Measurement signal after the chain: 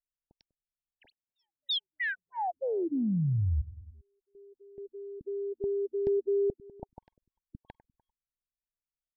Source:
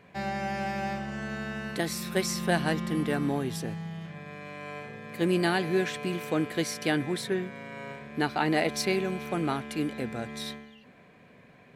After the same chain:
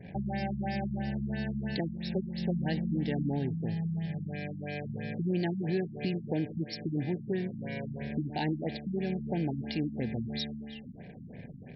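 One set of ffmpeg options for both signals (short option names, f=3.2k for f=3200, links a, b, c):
-af "bass=f=250:g=9,treble=f=4k:g=14,aecho=1:1:99|198|297|396:0.1|0.049|0.024|0.0118,acompressor=threshold=-39dB:ratio=2.5,anlmdn=0.001,asoftclip=type=tanh:threshold=-18.5dB,asuperstop=centerf=1200:order=12:qfactor=1.8,afftfilt=real='re*lt(b*sr/1024,270*pow(5700/270,0.5+0.5*sin(2*PI*3*pts/sr)))':imag='im*lt(b*sr/1024,270*pow(5700/270,0.5+0.5*sin(2*PI*3*pts/sr)))':win_size=1024:overlap=0.75,volume=5.5dB"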